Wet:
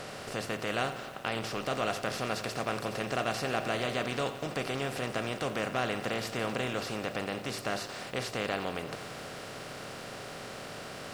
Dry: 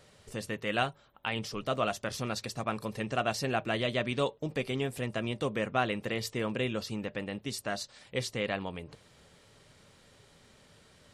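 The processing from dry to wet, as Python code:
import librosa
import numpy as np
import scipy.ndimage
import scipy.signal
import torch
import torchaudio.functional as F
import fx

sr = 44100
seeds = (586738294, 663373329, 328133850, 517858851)

y = fx.bin_compress(x, sr, power=0.4)
y = fx.echo_crushed(y, sr, ms=88, feedback_pct=80, bits=7, wet_db=-13.5)
y = F.gain(torch.from_numpy(y), -6.5).numpy()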